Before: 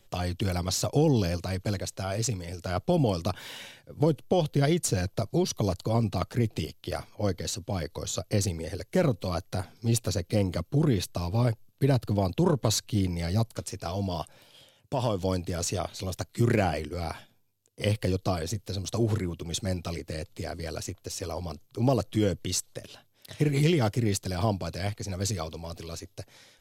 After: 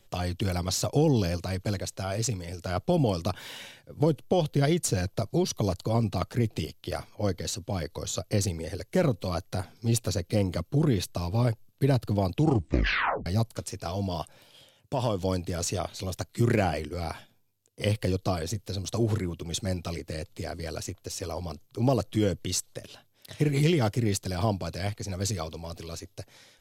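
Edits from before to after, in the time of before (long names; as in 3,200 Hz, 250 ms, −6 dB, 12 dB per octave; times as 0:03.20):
0:12.33: tape stop 0.93 s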